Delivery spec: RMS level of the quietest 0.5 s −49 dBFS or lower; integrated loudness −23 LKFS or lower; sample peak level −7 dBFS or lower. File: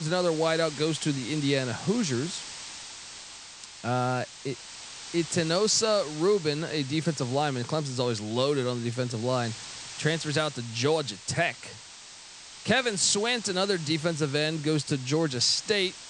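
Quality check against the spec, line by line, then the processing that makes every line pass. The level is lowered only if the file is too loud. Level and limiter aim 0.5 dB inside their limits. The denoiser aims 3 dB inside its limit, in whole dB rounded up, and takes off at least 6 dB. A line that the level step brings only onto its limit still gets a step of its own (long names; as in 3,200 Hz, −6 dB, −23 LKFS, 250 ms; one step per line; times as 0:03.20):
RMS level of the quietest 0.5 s −47 dBFS: out of spec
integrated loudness −27.5 LKFS: in spec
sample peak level −10.0 dBFS: in spec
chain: broadband denoise 6 dB, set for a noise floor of −47 dBFS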